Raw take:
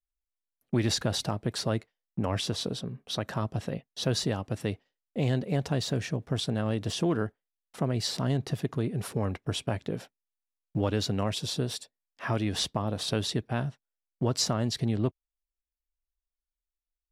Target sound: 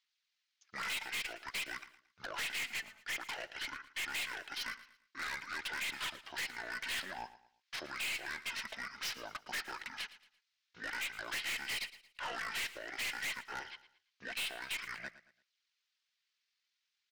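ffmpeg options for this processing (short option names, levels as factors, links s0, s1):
-af "asuperpass=centerf=5400:order=4:qfactor=0.83,highshelf=f=4200:g=4,acompressor=threshold=0.0126:ratio=2.5,asetrate=24046,aresample=44100,atempo=1.83401,aphaser=in_gain=1:out_gain=1:delay=4.6:decay=0.3:speed=0.52:type=sinusoidal,aeval=exprs='(tanh(316*val(0)+0.15)-tanh(0.15))/316':c=same,aecho=1:1:113|226|339:0.158|0.0555|0.0194,volume=5.01"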